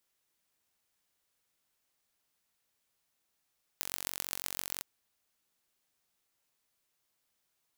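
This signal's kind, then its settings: pulse train 46/s, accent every 6, -5 dBFS 1.02 s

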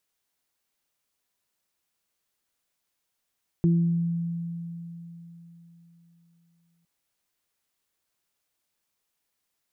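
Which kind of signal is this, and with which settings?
additive tone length 3.21 s, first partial 169 Hz, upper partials -7.5 dB, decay 3.79 s, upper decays 0.66 s, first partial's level -17 dB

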